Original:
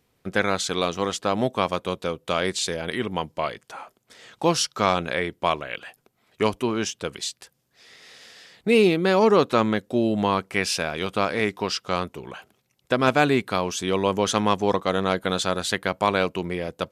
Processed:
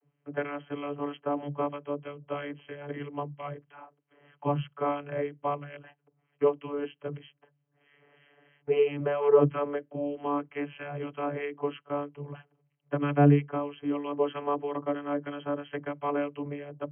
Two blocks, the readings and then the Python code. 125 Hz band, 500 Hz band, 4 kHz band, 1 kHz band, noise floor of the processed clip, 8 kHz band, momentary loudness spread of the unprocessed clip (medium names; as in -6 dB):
-1.5 dB, -5.5 dB, -21.5 dB, -9.0 dB, -76 dBFS, under -40 dB, 11 LU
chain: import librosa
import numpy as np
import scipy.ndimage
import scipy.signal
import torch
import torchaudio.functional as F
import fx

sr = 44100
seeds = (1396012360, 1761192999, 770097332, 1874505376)

y = fx.harmonic_tremolo(x, sr, hz=3.1, depth_pct=70, crossover_hz=1400.0)
y = fx.vocoder(y, sr, bands=32, carrier='saw', carrier_hz=144.0)
y = fx.brickwall_lowpass(y, sr, high_hz=3300.0)
y = y * 10.0 ** (-2.5 / 20.0)